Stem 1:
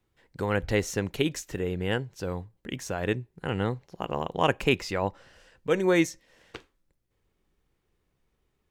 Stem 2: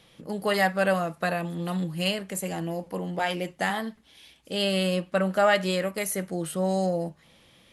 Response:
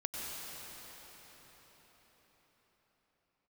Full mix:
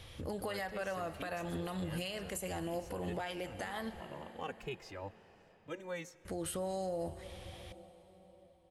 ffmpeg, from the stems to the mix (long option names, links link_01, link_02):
-filter_complex "[0:a]asplit=2[link_01][link_02];[link_02]adelay=2.3,afreqshift=-1.3[link_03];[link_01][link_03]amix=inputs=2:normalize=1,volume=-15dB,asplit=2[link_04][link_05];[link_05]volume=-20.5dB[link_06];[1:a]lowshelf=frequency=120:width_type=q:width=3:gain=11,acompressor=threshold=-33dB:ratio=6,volume=2dB,asplit=3[link_07][link_08][link_09];[link_07]atrim=end=4.01,asetpts=PTS-STARTPTS,afade=type=out:start_time=4.006:duration=0.004:curve=hsin[link_10];[link_08]atrim=start=4.01:end=6.25,asetpts=PTS-STARTPTS,volume=0[link_11];[link_09]atrim=start=6.25,asetpts=PTS-STARTPTS,afade=type=in:duration=0.004:curve=hsin[link_12];[link_10][link_11][link_12]concat=n=3:v=0:a=1,asplit=2[link_13][link_14];[link_14]volume=-16.5dB[link_15];[2:a]atrim=start_sample=2205[link_16];[link_06][link_15]amix=inputs=2:normalize=0[link_17];[link_17][link_16]afir=irnorm=-1:irlink=0[link_18];[link_04][link_13][link_18]amix=inputs=3:normalize=0,alimiter=level_in=5.5dB:limit=-24dB:level=0:latency=1:release=219,volume=-5.5dB"